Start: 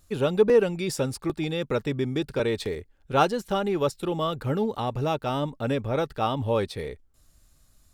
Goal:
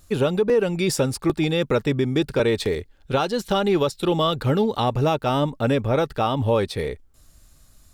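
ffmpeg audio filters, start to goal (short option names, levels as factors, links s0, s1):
-filter_complex "[0:a]asettb=1/sr,asplit=3[s0][s1][s2];[s0]atrim=end=2.744[s3];[s1]atrim=start=2.74:end=4.84,asetpts=PTS-STARTPTS,afade=t=in:d=0.004:c=qsin,afade=t=out:st=2.096:d=0.004:c=qsin,equalizer=f=3900:t=o:w=0.81:g=6[s4];[s2]atrim=start=4.836[s5];[s3][s4]acrossfade=d=0.004:c1=hsin:c2=qsin[s6];[s6][s5]acrossfade=d=0.004:c1=qsin:c2=hsin,alimiter=limit=0.126:level=0:latency=1:release=224,volume=2.24"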